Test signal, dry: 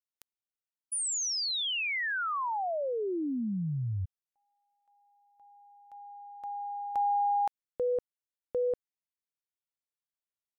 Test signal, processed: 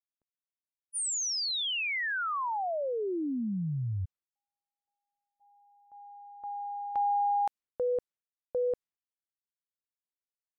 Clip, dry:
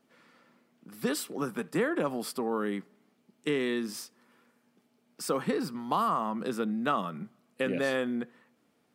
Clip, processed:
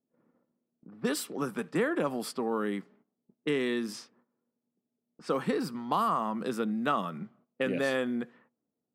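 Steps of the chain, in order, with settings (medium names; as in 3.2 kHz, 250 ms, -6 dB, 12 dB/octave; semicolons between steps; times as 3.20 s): gate -60 dBFS, range -14 dB; level-controlled noise filter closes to 530 Hz, open at -30 dBFS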